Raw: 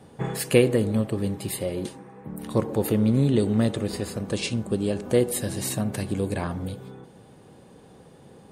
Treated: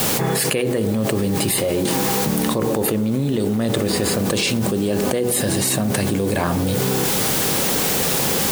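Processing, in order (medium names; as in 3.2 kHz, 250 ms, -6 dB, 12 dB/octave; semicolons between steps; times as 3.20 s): high-pass 140 Hz 6 dB/octave; hum notches 60/120/180/240/300/360/420/480 Hz; word length cut 8-bit, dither triangular; level flattener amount 100%; trim -4 dB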